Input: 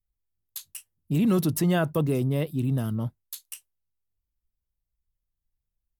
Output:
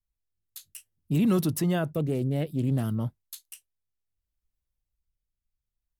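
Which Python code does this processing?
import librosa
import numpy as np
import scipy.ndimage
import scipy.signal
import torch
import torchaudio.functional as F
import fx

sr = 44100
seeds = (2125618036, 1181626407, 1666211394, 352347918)

y = fx.rotary(x, sr, hz=0.6)
y = fx.doppler_dist(y, sr, depth_ms=0.23, at=(1.9, 2.83))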